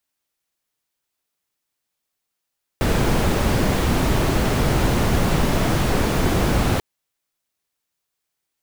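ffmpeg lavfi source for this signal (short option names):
-f lavfi -i "anoisesrc=c=brown:a=0.589:d=3.99:r=44100:seed=1"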